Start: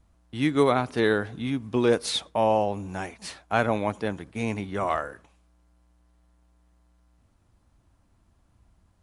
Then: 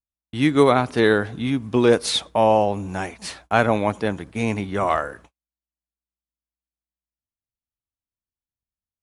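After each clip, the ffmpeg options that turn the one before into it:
ffmpeg -i in.wav -af "agate=range=-42dB:threshold=-52dB:ratio=16:detection=peak,volume=5.5dB" out.wav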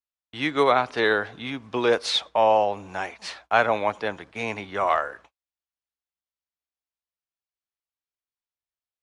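ffmpeg -i in.wav -filter_complex "[0:a]acrossover=split=470 6200:gain=0.2 1 0.112[link_01][link_02][link_03];[link_01][link_02][link_03]amix=inputs=3:normalize=0" out.wav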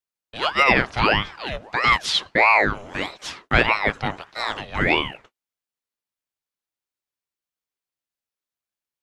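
ffmpeg -i in.wav -af "aeval=exprs='val(0)*sin(2*PI*990*n/s+990*0.7/1.6*sin(2*PI*1.6*n/s))':channel_layout=same,volume=5.5dB" out.wav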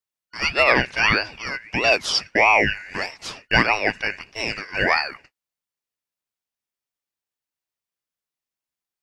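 ffmpeg -i in.wav -af "afftfilt=real='real(if(lt(b,272),68*(eq(floor(b/68),0)*1+eq(floor(b/68),1)*0+eq(floor(b/68),2)*3+eq(floor(b/68),3)*2)+mod(b,68),b),0)':imag='imag(if(lt(b,272),68*(eq(floor(b/68),0)*1+eq(floor(b/68),1)*0+eq(floor(b/68),2)*3+eq(floor(b/68),3)*2)+mod(b,68),b),0)':win_size=2048:overlap=0.75" out.wav

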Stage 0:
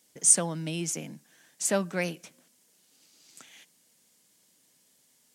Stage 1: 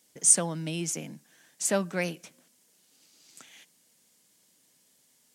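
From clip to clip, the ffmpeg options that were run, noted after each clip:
ffmpeg -i in.wav -af anull out.wav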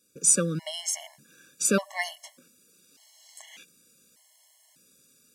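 ffmpeg -i in.wav -af "dynaudnorm=framelen=130:gausssize=3:maxgain=7dB,afftfilt=real='re*gt(sin(2*PI*0.84*pts/sr)*(1-2*mod(floor(b*sr/1024/560),2)),0)':imag='im*gt(sin(2*PI*0.84*pts/sr)*(1-2*mod(floor(b*sr/1024/560),2)),0)':win_size=1024:overlap=0.75" out.wav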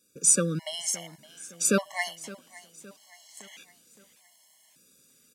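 ffmpeg -i in.wav -af "aecho=1:1:565|1130|1695|2260:0.112|0.0561|0.0281|0.014" out.wav

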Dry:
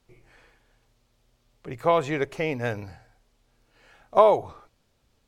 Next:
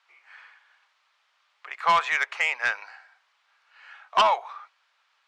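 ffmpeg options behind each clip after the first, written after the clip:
ffmpeg -i in.wav -af "highpass=frequency=1100:width=0.5412,highpass=frequency=1100:width=1.3066,adynamicsmooth=sensitivity=1:basefreq=2900,aeval=exprs='0.211*sin(PI/2*2.82*val(0)/0.211)':channel_layout=same" out.wav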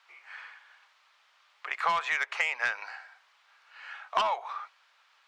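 ffmpeg -i in.wav -af "acompressor=threshold=-29dB:ratio=8,volume=4dB" out.wav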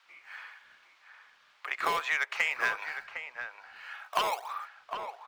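ffmpeg -i in.wav -filter_complex "[0:a]acrossover=split=180|800|3000[link_01][link_02][link_03][link_04];[link_02]acrusher=samples=17:mix=1:aa=0.000001:lfo=1:lforange=27.2:lforate=1.7[link_05];[link_01][link_05][link_03][link_04]amix=inputs=4:normalize=0,asplit=2[link_06][link_07];[link_07]adelay=758,volume=-7dB,highshelf=frequency=4000:gain=-17.1[link_08];[link_06][link_08]amix=inputs=2:normalize=0" out.wav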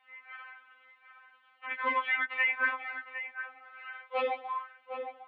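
ffmpeg -i in.wav -af "highpass=frequency=460:width_type=q:width=0.5412,highpass=frequency=460:width_type=q:width=1.307,lowpass=frequency=3200:width_type=q:width=0.5176,lowpass=frequency=3200:width_type=q:width=0.7071,lowpass=frequency=3200:width_type=q:width=1.932,afreqshift=-140,afftfilt=real='re*3.46*eq(mod(b,12),0)':imag='im*3.46*eq(mod(b,12),0)':win_size=2048:overlap=0.75,volume=1.5dB" out.wav

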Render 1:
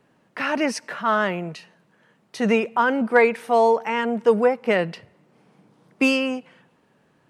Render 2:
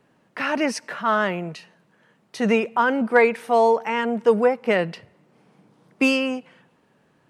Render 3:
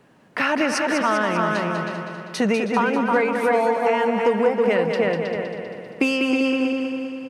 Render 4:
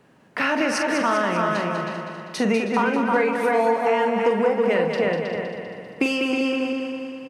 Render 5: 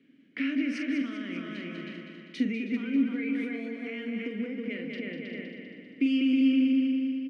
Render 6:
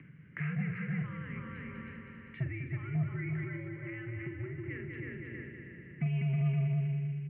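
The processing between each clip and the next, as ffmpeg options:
ffmpeg -i in.wav -af anull out.wav
ffmpeg -i in.wav -filter_complex "[0:a]asplit=2[link_01][link_02];[link_02]adelay=318,lowpass=frequency=3000:poles=1,volume=-5dB,asplit=2[link_03][link_04];[link_04]adelay=318,lowpass=frequency=3000:poles=1,volume=0.29,asplit=2[link_05][link_06];[link_06]adelay=318,lowpass=frequency=3000:poles=1,volume=0.29,asplit=2[link_07][link_08];[link_08]adelay=318,lowpass=frequency=3000:poles=1,volume=0.29[link_09];[link_03][link_05][link_07][link_09]amix=inputs=4:normalize=0[link_10];[link_01][link_10]amix=inputs=2:normalize=0,acompressor=threshold=-24dB:ratio=6,asplit=2[link_11][link_12];[link_12]aecho=0:1:197|394|591|788|985|1182|1379:0.447|0.259|0.15|0.0872|0.0505|0.0293|0.017[link_13];[link_11][link_13]amix=inputs=2:normalize=0,volume=6.5dB" out.wav
ffmpeg -i in.wav -filter_complex "[0:a]asplit=2[link_01][link_02];[link_02]adelay=44,volume=-7.5dB[link_03];[link_01][link_03]amix=inputs=2:normalize=0,volume=-1.5dB" out.wav
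ffmpeg -i in.wav -filter_complex "[0:a]alimiter=limit=-15.5dB:level=0:latency=1:release=238,asplit=3[link_01][link_02][link_03];[link_01]bandpass=frequency=270:width_type=q:width=8,volume=0dB[link_04];[link_02]bandpass=frequency=2290:width_type=q:width=8,volume=-6dB[link_05];[link_03]bandpass=frequency=3010:width_type=q:width=8,volume=-9dB[link_06];[link_04][link_05][link_06]amix=inputs=3:normalize=0,volume=5.5dB" out.wav
ffmpeg -i in.wav -af "aeval=exprs='0.178*(cos(1*acos(clip(val(0)/0.178,-1,1)))-cos(1*PI/2))+0.01*(cos(5*acos(clip(val(0)/0.178,-1,1)))-cos(5*PI/2))':channel_layout=same,acompressor=mode=upward:threshold=-35dB:ratio=2.5,highpass=frequency=240:width_type=q:width=0.5412,highpass=frequency=240:width_type=q:width=1.307,lowpass=frequency=2400:width_type=q:width=0.5176,lowpass=frequency=2400:width_type=q:width=0.7071,lowpass=frequency=2400:width_type=q:width=1.932,afreqshift=-120,volume=-5.5dB" out.wav

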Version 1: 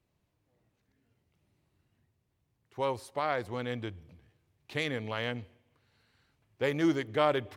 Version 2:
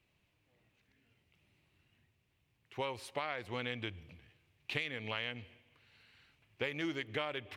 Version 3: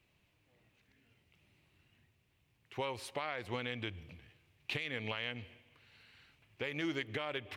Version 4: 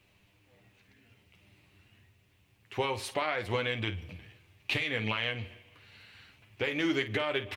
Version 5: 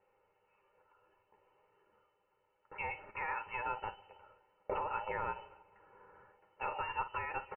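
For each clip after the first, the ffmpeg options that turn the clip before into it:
ffmpeg -i in.wav -af "equalizer=frequency=2600:width_type=o:width=1.1:gain=13,acompressor=threshold=-33dB:ratio=8,volume=-1dB" out.wav
ffmpeg -i in.wav -af "alimiter=level_in=3.5dB:limit=-24dB:level=0:latency=1:release=154,volume=-3.5dB,volume=2.5dB" out.wav
ffmpeg -i in.wav -af "aecho=1:1:10|52:0.501|0.251,volume=6.5dB" out.wav
ffmpeg -i in.wav -af "aderivative,aecho=1:1:2.3:0.9,lowpass=frequency=2600:width_type=q:width=0.5098,lowpass=frequency=2600:width_type=q:width=0.6013,lowpass=frequency=2600:width_type=q:width=0.9,lowpass=frequency=2600:width_type=q:width=2.563,afreqshift=-3100,volume=5.5dB" out.wav

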